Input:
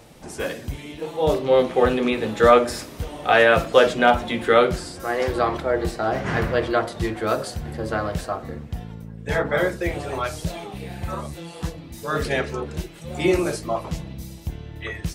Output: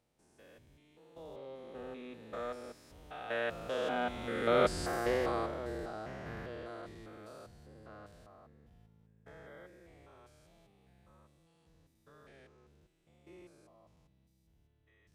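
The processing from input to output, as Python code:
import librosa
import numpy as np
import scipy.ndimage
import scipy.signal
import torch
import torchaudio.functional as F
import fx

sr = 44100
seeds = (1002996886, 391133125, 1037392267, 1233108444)

y = fx.spec_steps(x, sr, hold_ms=200)
y = fx.doppler_pass(y, sr, speed_mps=5, closest_m=1.3, pass_at_s=4.89)
y = y * 10.0 ** (-3.5 / 20.0)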